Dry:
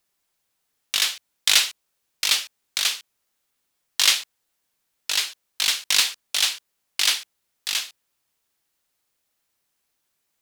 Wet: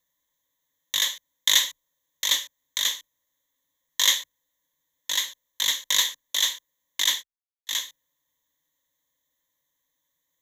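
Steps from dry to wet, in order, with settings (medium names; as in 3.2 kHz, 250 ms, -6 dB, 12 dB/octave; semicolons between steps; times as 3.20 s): 7.04–7.77 s: gate -27 dBFS, range -29 dB; rippled EQ curve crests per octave 1.1, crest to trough 17 dB; trim -6 dB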